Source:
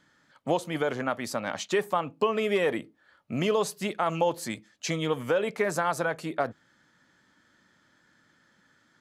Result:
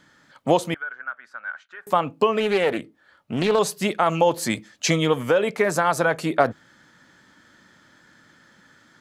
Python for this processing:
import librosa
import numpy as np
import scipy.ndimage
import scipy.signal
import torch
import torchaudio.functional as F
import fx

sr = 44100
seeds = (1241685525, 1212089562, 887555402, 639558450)

y = fx.rider(x, sr, range_db=4, speed_s=0.5)
y = fx.bandpass_q(y, sr, hz=1500.0, q=14.0, at=(0.74, 1.87))
y = fx.doppler_dist(y, sr, depth_ms=0.35, at=(2.4, 3.59))
y = F.gain(torch.from_numpy(y), 7.5).numpy()